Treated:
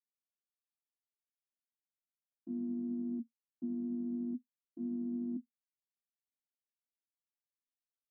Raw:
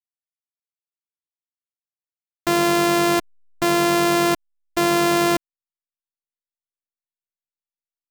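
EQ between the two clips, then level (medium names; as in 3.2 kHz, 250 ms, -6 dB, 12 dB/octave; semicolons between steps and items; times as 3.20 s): Butterworth band-pass 240 Hz, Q 8; +3.0 dB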